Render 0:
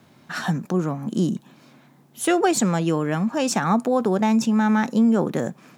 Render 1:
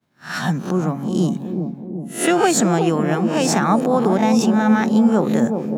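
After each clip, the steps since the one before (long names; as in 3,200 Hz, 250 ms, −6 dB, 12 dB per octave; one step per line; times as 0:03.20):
peak hold with a rise ahead of every peak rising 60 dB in 0.38 s
downward expander −40 dBFS
bucket-brigade delay 373 ms, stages 2,048, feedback 58%, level −5.5 dB
level +2 dB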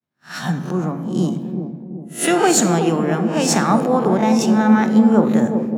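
on a send at −9 dB: convolution reverb RT60 1.5 s, pre-delay 22 ms
on the sum: multiband upward and downward expander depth 40%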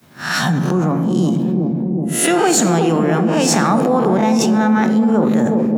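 envelope flattener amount 70%
level −3.5 dB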